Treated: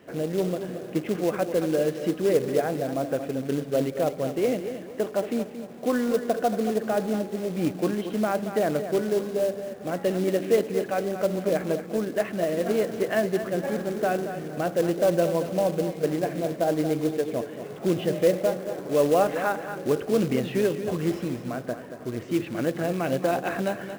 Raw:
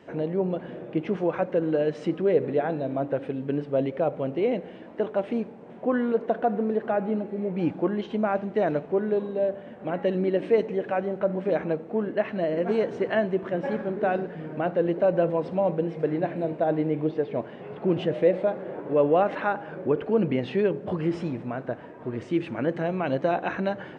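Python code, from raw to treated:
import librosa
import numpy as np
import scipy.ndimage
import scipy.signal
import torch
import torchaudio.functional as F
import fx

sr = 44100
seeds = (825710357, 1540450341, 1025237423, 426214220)

y = fx.notch(x, sr, hz=910.0, q=7.3)
y = fx.quant_float(y, sr, bits=2)
y = fx.echo_feedback(y, sr, ms=228, feedback_pct=33, wet_db=-10.0)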